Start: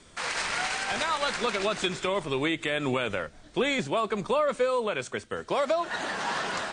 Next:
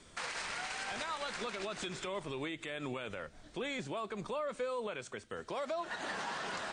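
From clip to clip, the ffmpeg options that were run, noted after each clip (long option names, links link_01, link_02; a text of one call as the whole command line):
ffmpeg -i in.wav -af "alimiter=level_in=1.5dB:limit=-24dB:level=0:latency=1:release=198,volume=-1.5dB,volume=-4dB" out.wav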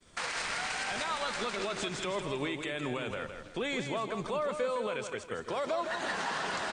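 ffmpeg -i in.wav -af "agate=range=-33dB:threshold=-52dB:ratio=3:detection=peak,aecho=1:1:162|324|486|648:0.422|0.164|0.0641|0.025,volume=4.5dB" out.wav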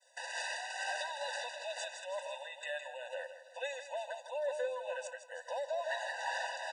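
ffmpeg -i in.wav -af "tremolo=f=2.2:d=0.43,afftfilt=real='re*eq(mod(floor(b*sr/1024/500),2),1)':imag='im*eq(mod(floor(b*sr/1024/500),2),1)':win_size=1024:overlap=0.75" out.wav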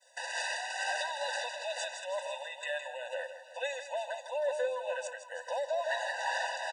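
ffmpeg -i in.wav -af "aecho=1:1:487:0.15,volume=4dB" out.wav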